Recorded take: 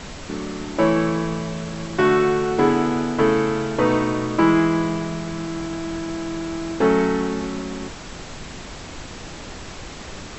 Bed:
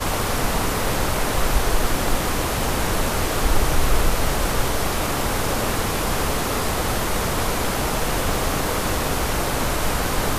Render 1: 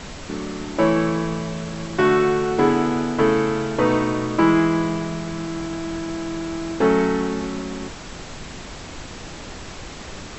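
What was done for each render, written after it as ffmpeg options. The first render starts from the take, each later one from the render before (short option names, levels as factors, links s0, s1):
-af anull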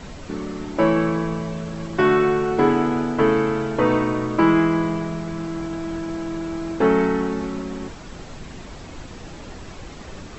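-af "afftdn=nr=7:nf=-37"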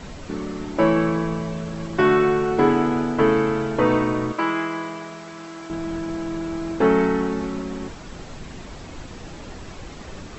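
-filter_complex "[0:a]asettb=1/sr,asplit=3[s0][s1][s2];[s0]atrim=end=4.324[s3];[s1]atrim=start=4.32:end=5.7,asetpts=PTS-STARTPTS,afade=t=in:d=0.004:c=qsin,afade=t=out:st=1.376:d=0.004:c=qsin,highpass=f=910:p=1[s4];[s2]atrim=start=5.696[s5];[s3][s4]acrossfade=d=0.004:c1=hsin:c2=qsin[s6];[s6][s5]acrossfade=d=0.004:c1=qsin:c2=hsin"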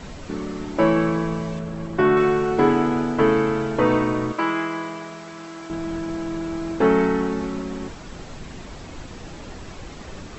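-filter_complex "[0:a]asettb=1/sr,asplit=3[s0][s1][s2];[s0]atrim=end=1.594[s3];[s1]atrim=start=1.59:end=2.17,asetpts=PTS-STARTPTS,afade=t=in:d=0.004:c=qsin,afade=t=out:st=0.576:d=0.004:c=qsin,equalizer=f=5500:w=0.44:g=-7[s4];[s2]atrim=start=2.166[s5];[s3][s4]acrossfade=d=0.004:c1=hsin:c2=qsin[s6];[s6][s5]acrossfade=d=0.004:c1=qsin:c2=hsin"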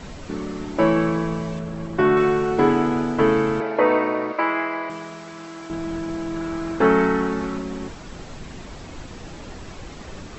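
-filter_complex "[0:a]asettb=1/sr,asplit=3[s0][s1][s2];[s0]atrim=end=3.604[s3];[s1]atrim=start=3.6:end=4.9,asetpts=PTS-STARTPTS,afade=t=in:d=0.004:c=qsin,afade=t=out:st=1.296:d=0.004:c=qsin,highpass=320,equalizer=f=580:t=q:w=4:g=8,equalizer=f=850:t=q:w=4:g=4,equalizer=f=2100:t=q:w=4:g=7,equalizer=f=3300:t=q:w=4:g=-8,lowpass=f=4400:w=0.5412,lowpass=f=4400:w=1.3066[s4];[s2]atrim=start=4.896[s5];[s3][s4]acrossfade=d=0.004:c1=hsin:c2=qsin[s6];[s6][s5]acrossfade=d=0.004:c1=qsin:c2=hsin,asettb=1/sr,asplit=3[s7][s8][s9];[s7]atrim=end=6.364[s10];[s8]atrim=start=6.36:end=7.58,asetpts=PTS-STARTPTS,afade=t=in:d=0.004:c=qsin,afade=t=out:st=1.216:d=0.004:c=qsin,equalizer=f=1400:w=1.5:g=5.5[s11];[s9]atrim=start=7.576[s12];[s10][s11]acrossfade=d=0.004:c1=hsin:c2=qsin[s13];[s13][s12]acrossfade=d=0.004:c1=qsin:c2=hsin"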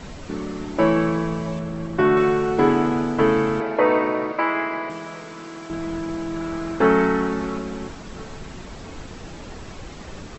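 -af "aecho=1:1:675|1350|2025|2700|3375:0.0891|0.0526|0.031|0.0183|0.0108"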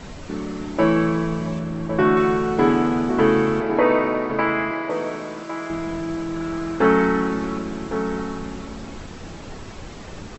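-filter_complex "[0:a]asplit=2[s0][s1];[s1]adelay=37,volume=0.224[s2];[s0][s2]amix=inputs=2:normalize=0,asplit=2[s3][s4];[s4]adelay=1108,volume=0.398,highshelf=f=4000:g=-24.9[s5];[s3][s5]amix=inputs=2:normalize=0"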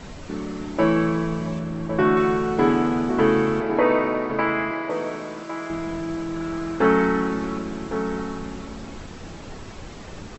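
-af "volume=0.841"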